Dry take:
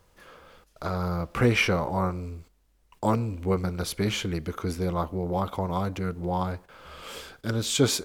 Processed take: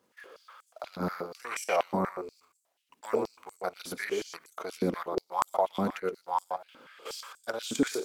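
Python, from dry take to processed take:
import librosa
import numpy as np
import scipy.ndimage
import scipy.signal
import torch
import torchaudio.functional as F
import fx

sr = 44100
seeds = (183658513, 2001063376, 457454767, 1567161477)

y = fx.dynamic_eq(x, sr, hz=3600.0, q=1.5, threshold_db=-46.0, ratio=4.0, max_db=-6)
y = fx.level_steps(y, sr, step_db=14)
y = y + 10.0 ** (-7.5 / 20.0) * np.pad(y, (int(121 * sr / 1000.0), 0))[:len(y)]
y = fx.filter_held_highpass(y, sr, hz=8.3, low_hz=250.0, high_hz=7700.0)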